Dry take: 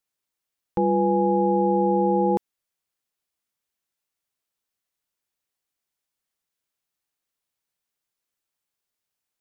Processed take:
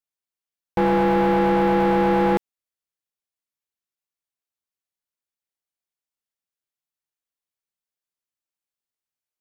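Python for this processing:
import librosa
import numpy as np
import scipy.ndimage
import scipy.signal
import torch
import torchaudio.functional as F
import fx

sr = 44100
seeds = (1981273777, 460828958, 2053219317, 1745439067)

y = fx.leveller(x, sr, passes=3)
y = y * 10.0 ** (-3.0 / 20.0)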